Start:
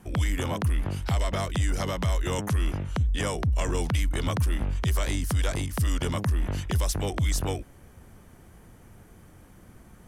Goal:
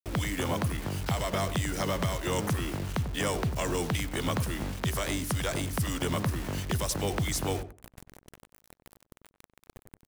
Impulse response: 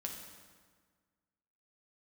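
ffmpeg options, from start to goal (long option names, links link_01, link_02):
-filter_complex "[0:a]acrossover=split=120|3800[link_01][link_02][link_03];[link_01]acompressor=threshold=-36dB:ratio=12[link_04];[link_04][link_02][link_03]amix=inputs=3:normalize=0,acrusher=bits=6:mix=0:aa=0.000001,asplit=2[link_05][link_06];[link_06]adelay=94,lowpass=frequency=950:poles=1,volume=-9.5dB,asplit=2[link_07][link_08];[link_08]adelay=94,lowpass=frequency=950:poles=1,volume=0.2,asplit=2[link_09][link_10];[link_10]adelay=94,lowpass=frequency=950:poles=1,volume=0.2[link_11];[link_05][link_07][link_09][link_11]amix=inputs=4:normalize=0"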